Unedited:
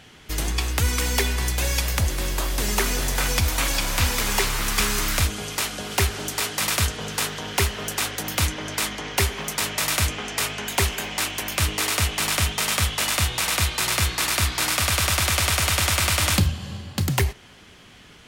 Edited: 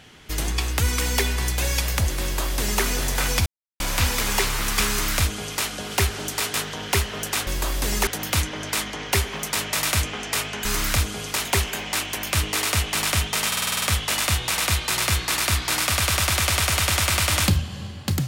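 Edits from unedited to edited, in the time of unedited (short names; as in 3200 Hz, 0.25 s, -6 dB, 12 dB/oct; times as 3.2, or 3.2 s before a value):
2.23–2.83 copy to 8.12
3.46–3.8 mute
4.89–5.69 copy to 10.7
6.54–7.19 cut
12.72 stutter 0.05 s, 8 plays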